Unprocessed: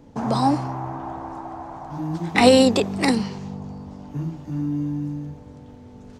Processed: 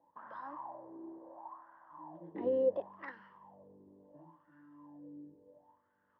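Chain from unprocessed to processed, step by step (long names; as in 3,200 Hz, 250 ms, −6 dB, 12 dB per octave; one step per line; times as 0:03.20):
high-frequency loss of the air 340 metres
LFO wah 0.71 Hz 370–1,500 Hz, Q 7.7
EQ curve with evenly spaced ripples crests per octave 1.2, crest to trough 11 dB
level −5.5 dB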